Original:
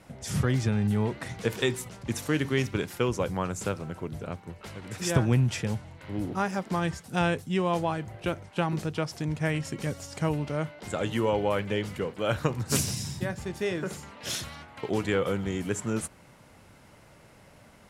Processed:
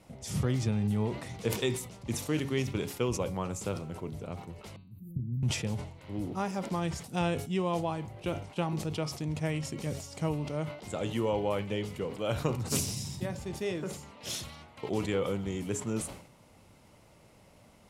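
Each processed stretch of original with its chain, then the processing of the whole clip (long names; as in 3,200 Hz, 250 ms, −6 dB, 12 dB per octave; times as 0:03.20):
0:04.76–0:05.43: inverse Chebyshev band-stop filter 810–6,100 Hz, stop band 70 dB + low-shelf EQ 230 Hz −8 dB
whole clip: parametric band 1,600 Hz −8.5 dB 0.55 octaves; hum removal 139.2 Hz, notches 33; level that may fall only so fast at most 90 dB per second; level −3.5 dB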